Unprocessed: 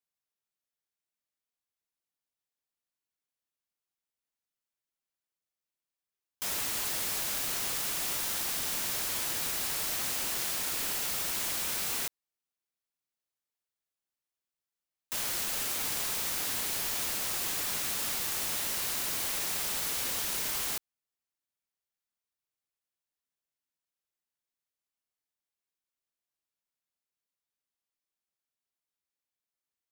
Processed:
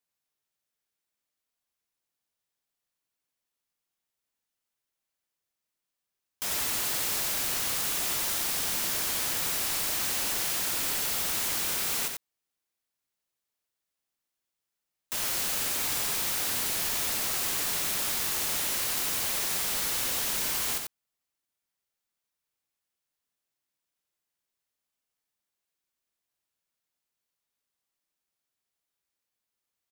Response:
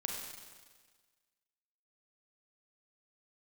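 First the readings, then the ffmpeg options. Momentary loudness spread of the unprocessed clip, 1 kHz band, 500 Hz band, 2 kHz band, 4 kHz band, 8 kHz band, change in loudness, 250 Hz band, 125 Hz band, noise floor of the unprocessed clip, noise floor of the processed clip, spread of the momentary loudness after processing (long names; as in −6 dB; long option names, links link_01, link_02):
0 LU, +3.0 dB, +3.0 dB, +3.0 dB, +3.5 dB, +3.0 dB, +3.0 dB, +3.0 dB, +3.5 dB, below −85 dBFS, below −85 dBFS, 1 LU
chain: -filter_complex "[0:a]asplit=2[link_01][link_02];[link_02]asoftclip=type=tanh:threshold=-37dB,volume=-4.5dB[link_03];[link_01][link_03]amix=inputs=2:normalize=0,aecho=1:1:90:0.562"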